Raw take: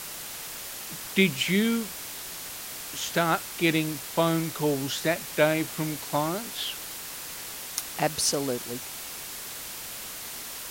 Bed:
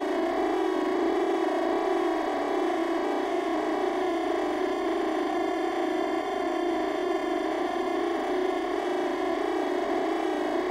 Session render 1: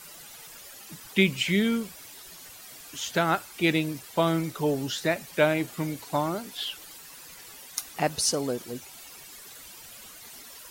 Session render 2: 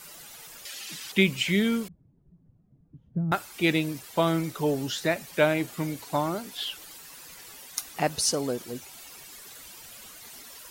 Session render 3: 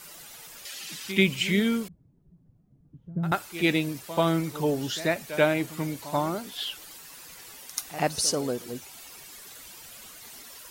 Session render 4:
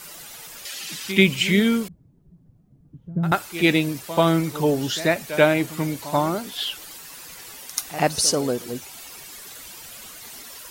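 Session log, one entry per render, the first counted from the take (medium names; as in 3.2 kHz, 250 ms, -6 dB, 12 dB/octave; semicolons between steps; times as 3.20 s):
noise reduction 12 dB, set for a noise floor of -39 dBFS
0.65–1.12 s: frequency weighting D; 1.88–3.32 s: resonant low-pass 160 Hz, resonance Q 2
reverse echo 86 ms -14.5 dB
trim +5.5 dB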